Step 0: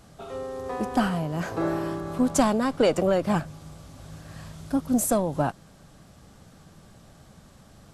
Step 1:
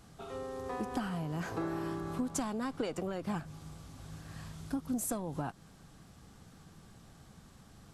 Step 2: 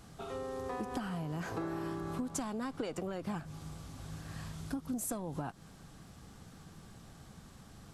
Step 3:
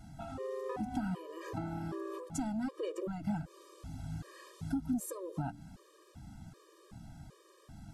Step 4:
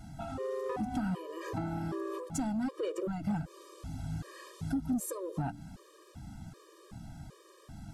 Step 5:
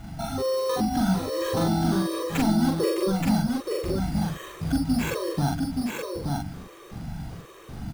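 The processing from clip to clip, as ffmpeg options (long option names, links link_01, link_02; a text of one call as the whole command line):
ffmpeg -i in.wav -af "acompressor=threshold=-27dB:ratio=5,equalizer=frequency=590:width_type=o:width=0.28:gain=-8.5,volume=-4.5dB" out.wav
ffmpeg -i in.wav -af "acompressor=threshold=-40dB:ratio=2,volume=2.5dB" out.wav
ffmpeg -i in.wav -af "tiltshelf=frequency=750:gain=3.5,bandreject=frequency=57.84:width_type=h:width=4,bandreject=frequency=115.68:width_type=h:width=4,bandreject=frequency=173.52:width_type=h:width=4,bandreject=frequency=231.36:width_type=h:width=4,bandreject=frequency=289.2:width_type=h:width=4,bandreject=frequency=347.04:width_type=h:width=4,bandreject=frequency=404.88:width_type=h:width=4,bandreject=frequency=462.72:width_type=h:width=4,bandreject=frequency=520.56:width_type=h:width=4,afftfilt=real='re*gt(sin(2*PI*1.3*pts/sr)*(1-2*mod(floor(b*sr/1024/320),2)),0)':imag='im*gt(sin(2*PI*1.3*pts/sr)*(1-2*mod(floor(b*sr/1024/320),2)),0)':win_size=1024:overlap=0.75,volume=1.5dB" out.wav
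ffmpeg -i in.wav -af "asoftclip=type=tanh:threshold=-28dB,volume=4dB" out.wav
ffmpeg -i in.wav -filter_complex "[0:a]acrusher=samples=9:mix=1:aa=0.000001,asplit=2[link_01][link_02];[link_02]adelay=42,volume=-2dB[link_03];[link_01][link_03]amix=inputs=2:normalize=0,aecho=1:1:875:0.668,volume=7.5dB" out.wav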